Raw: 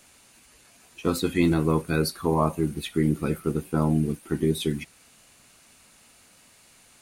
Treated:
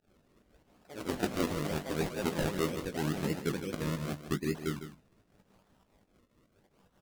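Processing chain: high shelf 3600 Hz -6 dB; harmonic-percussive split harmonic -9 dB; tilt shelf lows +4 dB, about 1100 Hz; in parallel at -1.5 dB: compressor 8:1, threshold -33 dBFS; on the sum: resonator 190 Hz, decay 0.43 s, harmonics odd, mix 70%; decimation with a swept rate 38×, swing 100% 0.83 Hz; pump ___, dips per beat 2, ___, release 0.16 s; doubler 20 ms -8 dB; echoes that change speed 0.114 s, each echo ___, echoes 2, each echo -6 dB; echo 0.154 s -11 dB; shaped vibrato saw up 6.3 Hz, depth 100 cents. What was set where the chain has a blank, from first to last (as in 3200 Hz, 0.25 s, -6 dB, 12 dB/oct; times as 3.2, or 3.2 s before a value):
144 bpm, -18 dB, +4 st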